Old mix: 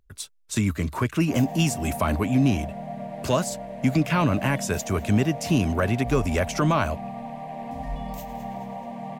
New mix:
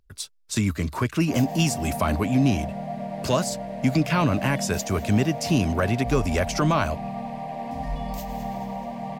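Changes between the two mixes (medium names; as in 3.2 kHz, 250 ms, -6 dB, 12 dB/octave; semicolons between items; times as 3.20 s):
background: send +9.5 dB; master: add peaking EQ 4.8 kHz +5.5 dB 0.55 oct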